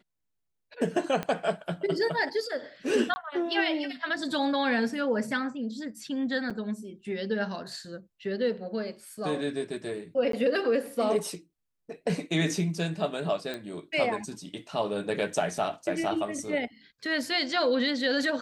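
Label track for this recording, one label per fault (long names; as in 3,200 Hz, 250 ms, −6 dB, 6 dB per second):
1.230000	1.230000	click −17 dBFS
3.140000	3.160000	drop-out 20 ms
6.500000	6.510000	drop-out 5.9 ms
10.320000	10.330000	drop-out 13 ms
13.540000	13.540000	click −21 dBFS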